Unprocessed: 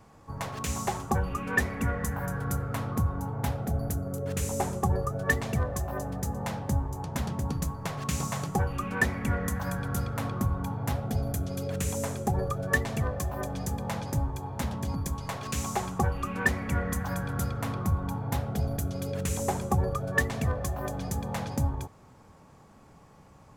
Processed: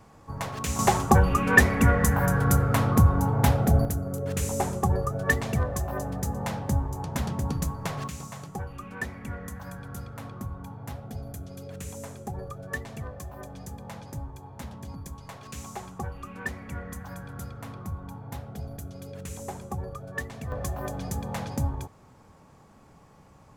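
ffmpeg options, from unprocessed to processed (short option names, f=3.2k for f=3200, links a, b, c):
-af "asetnsamples=n=441:p=0,asendcmd='0.79 volume volume 9dB;3.85 volume volume 2dB;8.08 volume volume -8dB;20.52 volume volume 0dB',volume=2dB"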